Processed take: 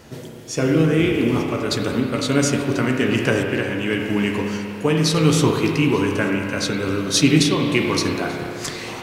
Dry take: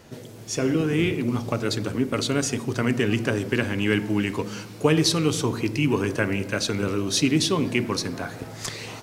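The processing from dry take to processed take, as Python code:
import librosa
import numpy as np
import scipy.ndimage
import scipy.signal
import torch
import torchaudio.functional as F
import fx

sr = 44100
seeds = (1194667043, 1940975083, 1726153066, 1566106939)

p1 = fx.doubler(x, sr, ms=14.0, db=-11.0)
p2 = fx.tremolo_random(p1, sr, seeds[0], hz=3.5, depth_pct=55)
p3 = p2 + fx.echo_single(p2, sr, ms=885, db=-23.5, dry=0)
p4 = fx.rev_spring(p3, sr, rt60_s=2.5, pass_ms=(31, 44), chirp_ms=75, drr_db=1.5)
y = F.gain(torch.from_numpy(p4), 5.5).numpy()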